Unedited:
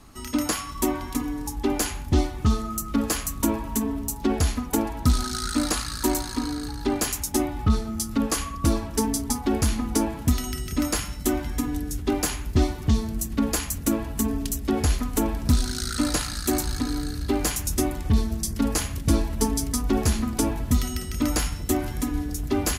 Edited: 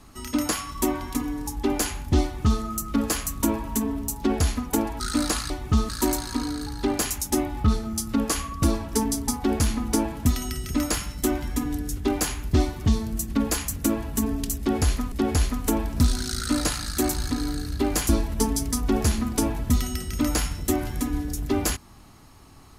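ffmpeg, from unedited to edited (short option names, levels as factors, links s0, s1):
-filter_complex "[0:a]asplit=6[s0][s1][s2][s3][s4][s5];[s0]atrim=end=5.002[s6];[s1]atrim=start=5.408:end=5.912[s7];[s2]atrim=start=2.228:end=2.622[s8];[s3]atrim=start=5.908:end=15.142[s9];[s4]atrim=start=14.608:end=17.582[s10];[s5]atrim=start=19.098[s11];[s6][s7]acrossfade=d=0.004:c1=hsin:c2=hsin[s12];[s12][s8]acrossfade=d=0.004:c1=hsin:c2=hsin[s13];[s13][s9]acrossfade=d=0.004:c1=hsin:c2=hsin[s14];[s14][s10]acrossfade=d=0.004:c1=hsin:c2=hsin[s15];[s15][s11]acrossfade=d=0.004:c1=hsin:c2=hsin"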